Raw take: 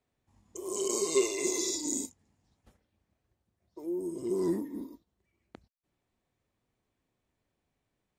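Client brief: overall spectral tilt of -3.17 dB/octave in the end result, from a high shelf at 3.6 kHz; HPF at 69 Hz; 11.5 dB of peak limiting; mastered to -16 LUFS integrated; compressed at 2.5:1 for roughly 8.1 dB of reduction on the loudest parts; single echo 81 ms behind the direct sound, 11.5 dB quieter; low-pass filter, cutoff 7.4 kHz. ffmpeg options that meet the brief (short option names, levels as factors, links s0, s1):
-af "highpass=69,lowpass=7400,highshelf=f=3600:g=3.5,acompressor=threshold=0.0224:ratio=2.5,alimiter=level_in=2.24:limit=0.0631:level=0:latency=1,volume=0.447,aecho=1:1:81:0.266,volume=15"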